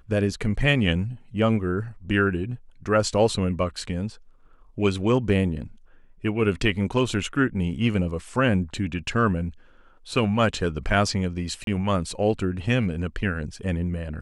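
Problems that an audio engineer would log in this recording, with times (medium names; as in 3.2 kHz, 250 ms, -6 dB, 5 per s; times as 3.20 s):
11.64–11.67 s: dropout 32 ms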